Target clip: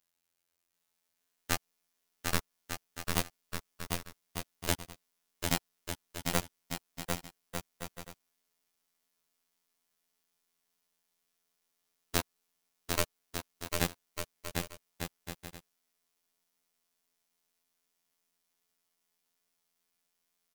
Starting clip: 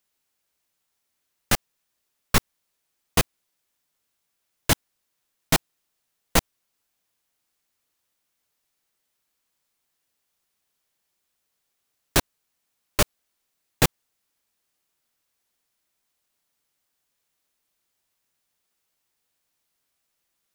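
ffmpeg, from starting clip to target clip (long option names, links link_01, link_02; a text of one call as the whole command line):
ffmpeg -i in.wav -filter_complex "[0:a]acompressor=threshold=-20dB:ratio=6,afftfilt=real='hypot(re,im)*cos(PI*b)':imag='0':win_size=2048:overlap=0.75,asplit=2[link_01][link_02];[link_02]aecho=0:1:750|1200|1470|1632|1729:0.631|0.398|0.251|0.158|0.1[link_03];[link_01][link_03]amix=inputs=2:normalize=0,volume=-2.5dB" out.wav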